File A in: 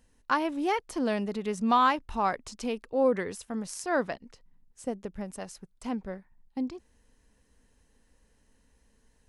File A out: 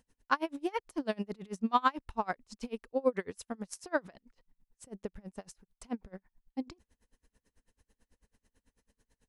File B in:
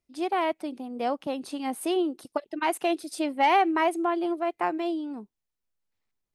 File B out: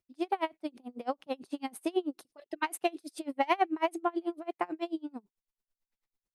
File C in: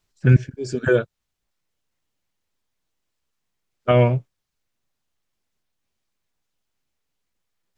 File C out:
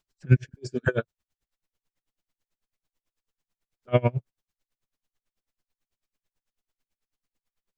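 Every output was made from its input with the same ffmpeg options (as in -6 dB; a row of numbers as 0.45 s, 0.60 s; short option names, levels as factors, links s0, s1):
-af "aeval=exprs='val(0)*pow(10,-31*(0.5-0.5*cos(2*PI*9.1*n/s))/20)':c=same"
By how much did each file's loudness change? -5.5 LU, -6.5 LU, -6.5 LU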